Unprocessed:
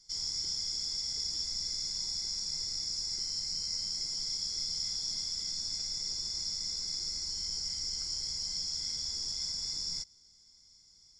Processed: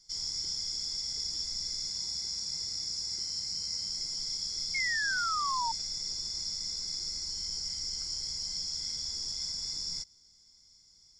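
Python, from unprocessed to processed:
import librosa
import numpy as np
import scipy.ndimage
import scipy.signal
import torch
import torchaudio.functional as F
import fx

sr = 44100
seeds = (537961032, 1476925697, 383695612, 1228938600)

y = fx.highpass(x, sr, hz=45.0, slope=12, at=(1.9, 3.9))
y = fx.spec_paint(y, sr, seeds[0], shape='fall', start_s=4.74, length_s=0.98, low_hz=890.0, high_hz=2200.0, level_db=-32.0)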